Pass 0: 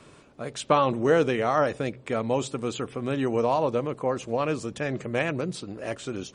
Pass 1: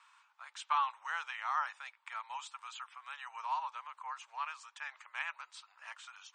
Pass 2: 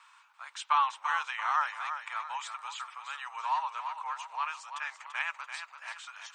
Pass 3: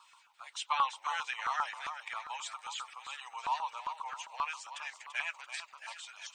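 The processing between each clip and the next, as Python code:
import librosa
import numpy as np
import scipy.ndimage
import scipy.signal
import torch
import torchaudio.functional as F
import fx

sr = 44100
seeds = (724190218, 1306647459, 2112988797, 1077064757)

y1 = scipy.signal.sosfilt(scipy.signal.cheby1(5, 1.0, [890.0, 8800.0], 'bandpass', fs=sr, output='sos'), x)
y1 = fx.high_shelf(y1, sr, hz=3300.0, db=-10.0)
y1 = F.gain(torch.from_numpy(y1), -4.5).numpy()
y2 = fx.echo_feedback(y1, sr, ms=338, feedback_pct=42, wet_db=-8.5)
y2 = F.gain(torch.from_numpy(y2), 5.5).numpy()
y3 = fx.spec_quant(y2, sr, step_db=15)
y3 = fx.filter_lfo_notch(y3, sr, shape='saw_down', hz=7.5, low_hz=890.0, high_hz=2100.0, q=0.72)
y3 = F.gain(torch.from_numpy(y3), 3.5).numpy()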